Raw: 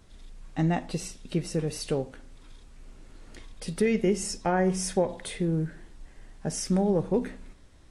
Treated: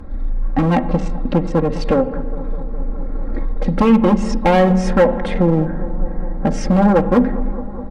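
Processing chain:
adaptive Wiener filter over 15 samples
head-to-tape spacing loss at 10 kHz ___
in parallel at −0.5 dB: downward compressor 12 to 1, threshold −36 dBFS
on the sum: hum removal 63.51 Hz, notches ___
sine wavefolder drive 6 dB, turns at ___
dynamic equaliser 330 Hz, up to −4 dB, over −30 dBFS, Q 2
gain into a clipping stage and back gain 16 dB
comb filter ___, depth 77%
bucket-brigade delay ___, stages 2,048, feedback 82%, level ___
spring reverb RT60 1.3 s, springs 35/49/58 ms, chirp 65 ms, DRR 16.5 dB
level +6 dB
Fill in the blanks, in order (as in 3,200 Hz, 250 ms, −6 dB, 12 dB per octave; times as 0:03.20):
35 dB, 3, −13.5 dBFS, 3.7 ms, 205 ms, −17 dB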